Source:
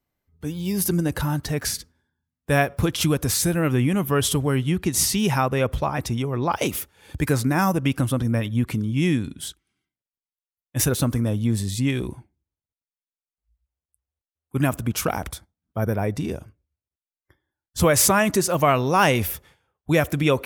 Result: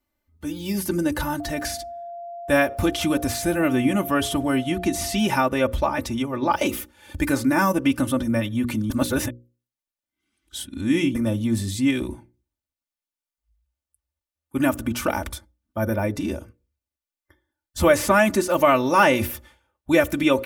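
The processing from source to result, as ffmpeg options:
-filter_complex "[0:a]asettb=1/sr,asplit=3[s0][s1][s2];[s0]atrim=end=1.404[s3];[s1]atrim=start=1.4:end=5.27,asetpts=PTS-STARTPTS,afade=t=in:d=0.004:c=qsin,afade=t=out:st=3.866:d=0.004:c=qsin,aeval=exprs='val(0)+0.0251*sin(2*PI*690*n/s)':c=same[s4];[s2]atrim=start=5.266[s5];[s3][s4]acrossfade=d=0.004:c1=hsin:c2=qsin[s6];[s6][s5]acrossfade=d=0.004:c1=qsin:c2=hsin,asplit=3[s7][s8][s9];[s7]atrim=end=8.902[s10];[s8]atrim=start=8.898:end=11.152,asetpts=PTS-STARTPTS,areverse[s11];[s9]atrim=start=11.148[s12];[s10][s11]acrossfade=d=0.004:c1=hsin:c2=hsin[s13];[s13][s12]acrossfade=d=0.004:c1=hsin:c2=hsin,bandreject=f=60:t=h:w=6,bandreject=f=120:t=h:w=6,bandreject=f=180:t=h:w=6,bandreject=f=240:t=h:w=6,bandreject=f=300:t=h:w=6,bandreject=f=360:t=h:w=6,bandreject=f=420:t=h:w=6,bandreject=f=480:t=h:w=6,bandreject=f=540:t=h:w=6,acrossover=split=3000[s14][s15];[s15]acompressor=threshold=0.0316:ratio=4:attack=1:release=60[s16];[s14][s16]amix=inputs=2:normalize=0,aecho=1:1:3.4:0.77"

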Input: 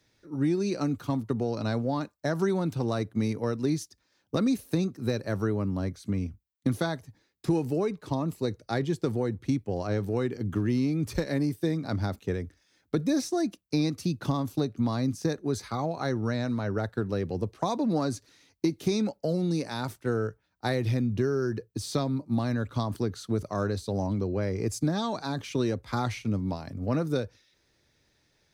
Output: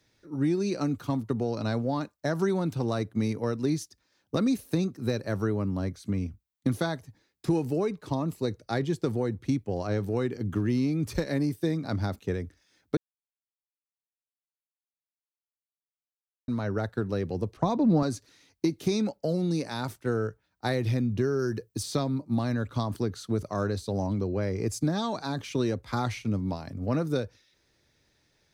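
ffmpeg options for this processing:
-filter_complex "[0:a]asettb=1/sr,asplit=3[s0][s1][s2];[s0]atrim=end=17.574[s3];[s1]atrim=start=17.57:end=18.03,asetpts=PTS-STARTPTS,afade=t=in:d=0.004:c=qsin,afade=t=out:st=0.456:d=0.004:c=qsin,aemphasis=mode=reproduction:type=bsi[s4];[s2]atrim=start=18.026[s5];[s3][s4]acrossfade=d=0.004:c1=hsin:c2=qsin[s6];[s6][s5]acrossfade=d=0.004:c1=qsin:c2=hsin,asettb=1/sr,asplit=3[s7][s8][s9];[s7]atrim=end=21.394[s10];[s8]atrim=start=21.39:end=21.83,asetpts=PTS-STARTPTS,afade=t=in:d=0.004:c=qsin,afade=t=out:st=0.436:d=0.004:c=qsin,highshelf=f=5200:g=8.5[s11];[s9]atrim=start=21.826[s12];[s10][s11]acrossfade=d=0.004:c1=hsin:c2=qsin[s13];[s13][s12]acrossfade=d=0.004:c1=qsin:c2=hsin,asplit=3[s14][s15][s16];[s14]atrim=end=12.97,asetpts=PTS-STARTPTS,afade=t=out:st=12.966:d=0.004:c=hsin[s17];[s15]atrim=start=12.97:end=16.48,asetpts=PTS-STARTPTS,volume=0[s18];[s16]atrim=start=16.48,asetpts=PTS-STARTPTS,afade=t=in:d=0.004:c=hsin[s19];[s17][s18][s19]concat=n=3:v=0:a=1"

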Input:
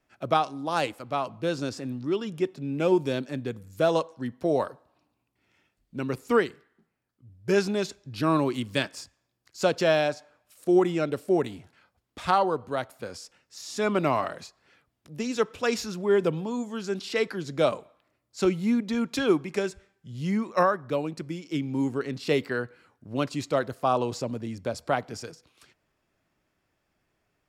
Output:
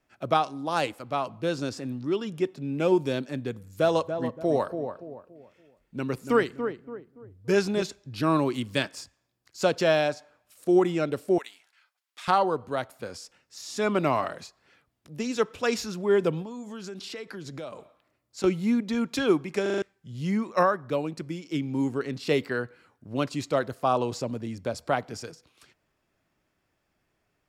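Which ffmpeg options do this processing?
-filter_complex "[0:a]asettb=1/sr,asplit=3[s0][s1][s2];[s0]atrim=end=3.544[s3];[s1]atrim=start=3.54:end=7.82,asetpts=PTS-STARTPTS,afade=t=in:d=0.004:c=qsin,afade=t=out:st=4.276:d=0.004:c=qsin,asplit=2[s4][s5];[s5]adelay=285,lowpass=f=1100:p=1,volume=0.447,asplit=2[s6][s7];[s7]adelay=285,lowpass=f=1100:p=1,volume=0.37,asplit=2[s8][s9];[s9]adelay=285,lowpass=f=1100:p=1,volume=0.37,asplit=2[s10][s11];[s11]adelay=285,lowpass=f=1100:p=1,volume=0.37[s12];[s4][s6][s8][s10][s12]amix=inputs=5:normalize=0,atrim=end_sample=188748[s13];[s2]atrim=start=7.816[s14];[s3][s13]acrossfade=d=0.004:c1=hsin:c2=qsin[s15];[s15][s14]acrossfade=d=0.004:c1=qsin:c2=hsin,asettb=1/sr,asplit=3[s16][s17][s18];[s16]atrim=end=11.384[s19];[s17]atrim=start=11.38:end=12.28,asetpts=PTS-STARTPTS,afade=t=in:d=0.004:c=qsin,afade=t=out:st=0.896:d=0.004:c=qsin,highpass=1500[s20];[s18]atrim=start=12.276[s21];[s19][s20]acrossfade=d=0.004:c1=hsin:c2=qsin[s22];[s22][s21]acrossfade=d=0.004:c1=qsin:c2=hsin,asettb=1/sr,asplit=3[s23][s24][s25];[s23]atrim=end=16.424[s26];[s24]atrim=start=16.42:end=18.44,asetpts=PTS-STARTPTS,afade=t=in:d=0.004:c=qsin,afade=t=out:st=2.016:d=0.004:c=qsin,acompressor=threshold=0.0178:ratio=6:attack=3.2:release=140:knee=1:detection=peak[s27];[s25]atrim=start=18.436[s28];[s26][s27]acrossfade=d=0.004:c1=hsin:c2=qsin[s29];[s29][s28]acrossfade=d=0.004:c1=qsin:c2=hsin,asplit=6[s30][s31][s32][s33][s34][s35];[s30]atrim=end=19.662[s36];[s31]atrim=start=19.618:end=19.662[s37];[s32]atrim=start=19.618:end=19.662[s38];[s33]atrim=start=19.618:end=19.662[s39];[s34]atrim=start=19.618:end=19.662[s40];[s35]atrim=start=19.818[s41];[s36][s37]acrossfade=d=0.004:c1=hsin:c2=hsin[s42];[s42][s38]acrossfade=d=0.004:c1=hsin:c2=hsin[s43];[s43][s39]acrossfade=d=0.004:c1=hsin:c2=hsin[s44];[s44][s40]acrossfade=d=0.004:c1=hsin:c2=hsin[s45];[s45][s41]acrossfade=d=0.004:c1=hsin:c2=hsin"

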